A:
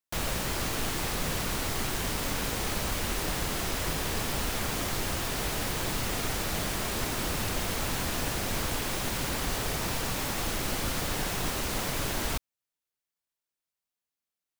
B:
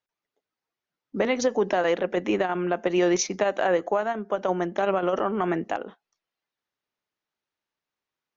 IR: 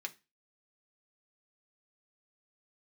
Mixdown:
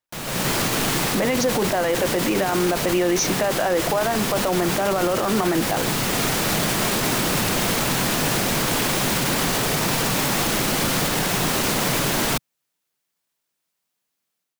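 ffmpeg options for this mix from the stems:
-filter_complex "[0:a]lowshelf=f=100:t=q:w=1.5:g=-11,volume=0.841[s0];[1:a]bandreject=f=410:w=12,volume=1[s1];[s0][s1]amix=inputs=2:normalize=0,dynaudnorm=f=240:g=3:m=4.47,alimiter=limit=0.251:level=0:latency=1:release=18"

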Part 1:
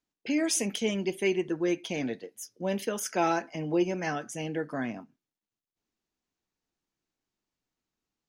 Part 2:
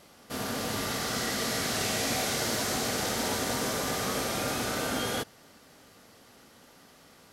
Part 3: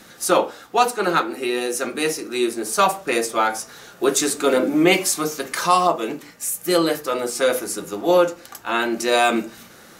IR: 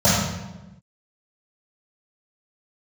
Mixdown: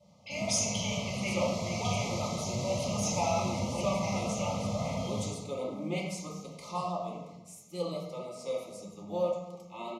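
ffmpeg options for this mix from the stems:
-filter_complex "[0:a]highpass=1100,volume=1,asplit=2[s0][s1];[s1]volume=0.168[s2];[1:a]volume=0.15,asplit=2[s3][s4];[s4]volume=0.335[s5];[2:a]adelay=1050,volume=0.126,asplit=2[s6][s7];[s7]volume=0.0944[s8];[3:a]atrim=start_sample=2205[s9];[s2][s5][s8]amix=inputs=3:normalize=0[s10];[s10][s9]afir=irnorm=-1:irlink=0[s11];[s0][s3][s6][s11]amix=inputs=4:normalize=0,lowpass=8200,flanger=delay=1.5:depth=9.1:regen=72:speed=1.8:shape=sinusoidal,asuperstop=centerf=1600:order=20:qfactor=2.1"

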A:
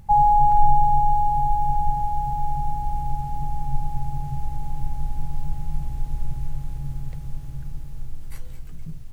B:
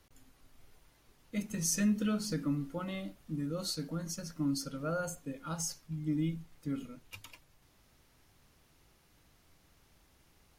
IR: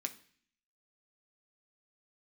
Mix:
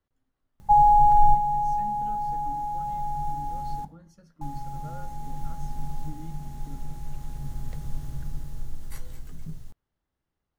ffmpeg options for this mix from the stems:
-filter_complex "[0:a]adelay=600,volume=0.668,asplit=3[s0][s1][s2];[s0]atrim=end=3.85,asetpts=PTS-STARTPTS,afade=t=out:st=3.846:d=0.004:c=hsin[s3];[s1]atrim=start=3.85:end=4.41,asetpts=PTS-STARTPTS,volume=0[s4];[s2]atrim=start=4.41,asetpts=PTS-STARTPTS,afade=t=in:d=0.004:c=hsin[s5];[s3][s4][s5]concat=n=3:v=0:a=1,asplit=2[s6][s7];[s7]volume=0.708[s8];[1:a]bass=f=250:g=0,treble=f=4000:g=-14,volume=0.158,asplit=2[s9][s10];[s10]apad=whole_len=428796[s11];[s6][s11]sidechaincompress=threshold=0.00112:ratio=8:attack=16:release=1390[s12];[2:a]atrim=start_sample=2205[s13];[s8][s13]afir=irnorm=-1:irlink=0[s14];[s12][s9][s14]amix=inputs=3:normalize=0,equalizer=f=2400:w=4:g=-7,dynaudnorm=f=290:g=17:m=1.68"

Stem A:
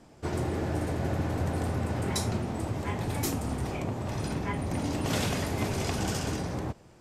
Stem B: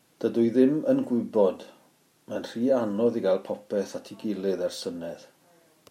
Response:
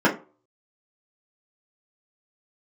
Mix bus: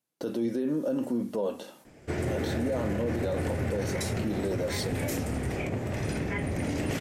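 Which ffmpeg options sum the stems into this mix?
-filter_complex "[0:a]equalizer=f=500:t=o:w=1:g=4,equalizer=f=1000:t=o:w=1:g=-8,equalizer=f=2000:t=o:w=1:g=8,equalizer=f=4000:t=o:w=1:g=-4,adelay=1850,volume=1.12[s0];[1:a]agate=range=0.0501:threshold=0.00158:ratio=16:detection=peak,highshelf=f=8300:g=9,acompressor=threshold=0.0562:ratio=2,volume=1.19[s1];[s0][s1]amix=inputs=2:normalize=0,alimiter=limit=0.0841:level=0:latency=1:release=31"

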